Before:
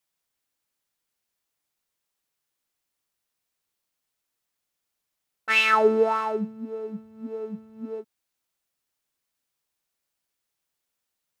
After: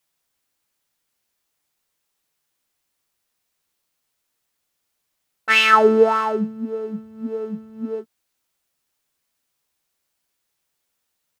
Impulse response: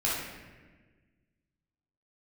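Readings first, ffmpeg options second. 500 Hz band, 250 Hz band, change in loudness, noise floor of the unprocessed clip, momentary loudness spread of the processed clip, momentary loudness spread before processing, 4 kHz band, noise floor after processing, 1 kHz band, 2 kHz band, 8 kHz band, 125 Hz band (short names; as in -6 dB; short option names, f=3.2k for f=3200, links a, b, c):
+5.5 dB, +7.0 dB, +5.5 dB, -82 dBFS, 19 LU, 19 LU, +7.0 dB, -76 dBFS, +6.5 dB, +5.0 dB, +6.5 dB, n/a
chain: -filter_complex "[0:a]asplit=2[a][b];[b]adelay=13,volume=-11dB[c];[a][c]amix=inputs=2:normalize=0,volume=6dB"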